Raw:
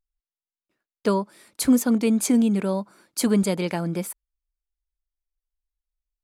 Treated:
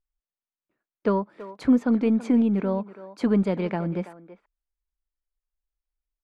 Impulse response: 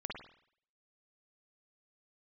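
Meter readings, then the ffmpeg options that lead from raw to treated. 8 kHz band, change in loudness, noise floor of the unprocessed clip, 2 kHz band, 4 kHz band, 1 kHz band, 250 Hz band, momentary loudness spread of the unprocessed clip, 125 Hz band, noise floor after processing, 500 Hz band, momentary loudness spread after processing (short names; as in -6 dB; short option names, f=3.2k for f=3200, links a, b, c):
under -25 dB, -1.0 dB, under -85 dBFS, -3.5 dB, under -10 dB, -1.0 dB, -1.0 dB, 12 LU, -1.0 dB, under -85 dBFS, -1.0 dB, 11 LU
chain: -filter_complex "[0:a]lowpass=2k,aeval=exprs='0.355*(cos(1*acos(clip(val(0)/0.355,-1,1)))-cos(1*PI/2))+0.00282*(cos(6*acos(clip(val(0)/0.355,-1,1)))-cos(6*PI/2))':c=same,asplit=2[a][b];[b]adelay=330,highpass=300,lowpass=3.4k,asoftclip=type=hard:threshold=-17dB,volume=-14dB[c];[a][c]amix=inputs=2:normalize=0,volume=-1dB"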